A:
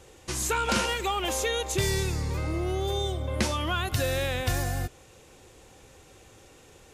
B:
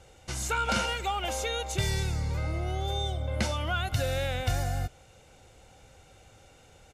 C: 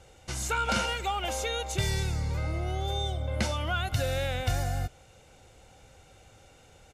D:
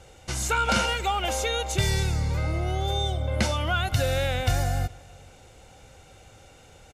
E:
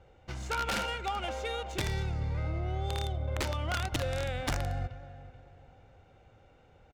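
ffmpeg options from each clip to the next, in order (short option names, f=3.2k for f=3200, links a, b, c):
-af "highshelf=f=9.5k:g=-8.5,aecho=1:1:1.4:0.5,volume=-3dB"
-af anull
-filter_complex "[0:a]asplit=2[a][b];[b]adelay=425.7,volume=-24dB,highshelf=f=4k:g=-9.58[c];[a][c]amix=inputs=2:normalize=0,volume=4.5dB"
-filter_complex "[0:a]asplit=2[a][b];[b]adelay=433,lowpass=f=4.6k:p=1,volume=-15dB,asplit=2[c][d];[d]adelay=433,lowpass=f=4.6k:p=1,volume=0.38,asplit=2[e][f];[f]adelay=433,lowpass=f=4.6k:p=1,volume=0.38[g];[a][c][e][g]amix=inputs=4:normalize=0,aeval=exprs='(mod(5.96*val(0)+1,2)-1)/5.96':c=same,adynamicsmooth=sensitivity=2.5:basefreq=2.4k,volume=-7.5dB"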